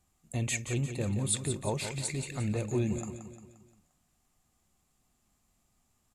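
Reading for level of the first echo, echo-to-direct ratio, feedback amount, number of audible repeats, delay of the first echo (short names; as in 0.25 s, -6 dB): -9.0 dB, -8.0 dB, 48%, 5, 0.175 s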